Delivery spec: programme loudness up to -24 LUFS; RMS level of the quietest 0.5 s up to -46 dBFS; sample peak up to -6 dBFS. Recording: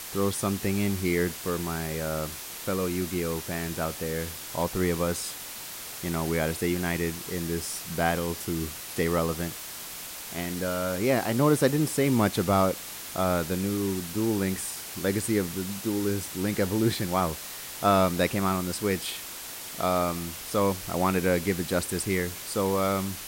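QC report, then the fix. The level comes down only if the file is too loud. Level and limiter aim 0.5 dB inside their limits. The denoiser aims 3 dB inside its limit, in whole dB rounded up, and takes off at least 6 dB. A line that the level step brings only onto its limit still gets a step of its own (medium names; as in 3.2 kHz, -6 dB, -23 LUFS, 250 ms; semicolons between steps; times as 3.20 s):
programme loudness -28.0 LUFS: pass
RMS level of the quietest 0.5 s -39 dBFS: fail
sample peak -9.0 dBFS: pass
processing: noise reduction 10 dB, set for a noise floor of -39 dBFS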